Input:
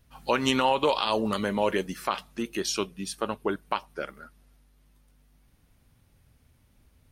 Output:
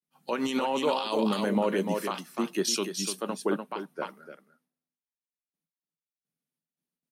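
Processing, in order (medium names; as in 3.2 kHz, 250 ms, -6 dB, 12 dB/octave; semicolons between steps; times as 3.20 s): gate with hold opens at -52 dBFS; elliptic high-pass 160 Hz, stop band 40 dB; treble shelf 6.1 kHz +11 dB; delay 296 ms -7 dB; peak limiter -18.5 dBFS, peak gain reduction 11 dB; tilt EQ -1.5 dB/octave; three bands expanded up and down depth 70%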